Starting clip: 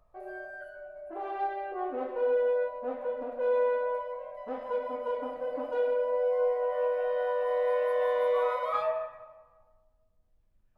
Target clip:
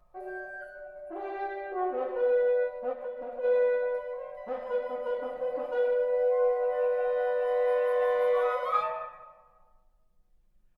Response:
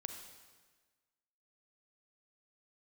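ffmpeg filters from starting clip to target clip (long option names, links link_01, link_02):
-filter_complex "[0:a]aecho=1:1:5.6:0.67,asplit=3[link_01][link_02][link_03];[link_01]afade=type=out:start_time=2.92:duration=0.02[link_04];[link_02]acompressor=threshold=-34dB:ratio=6,afade=type=in:start_time=2.92:duration=0.02,afade=type=out:start_time=3.43:duration=0.02[link_05];[link_03]afade=type=in:start_time=3.43:duration=0.02[link_06];[link_04][link_05][link_06]amix=inputs=3:normalize=0"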